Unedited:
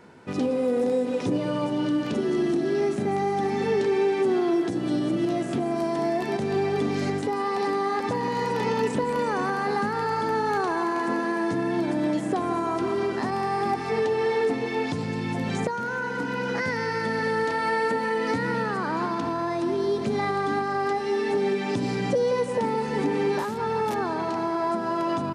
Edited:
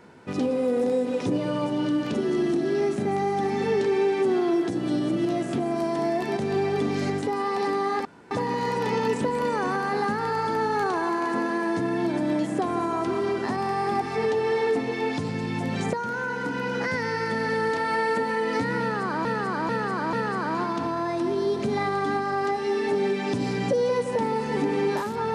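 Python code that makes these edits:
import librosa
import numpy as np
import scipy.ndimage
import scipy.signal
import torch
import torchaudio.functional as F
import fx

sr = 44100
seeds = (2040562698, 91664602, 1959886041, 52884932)

y = fx.edit(x, sr, fx.insert_room_tone(at_s=8.05, length_s=0.26),
    fx.repeat(start_s=18.55, length_s=0.44, count=4), tone=tone)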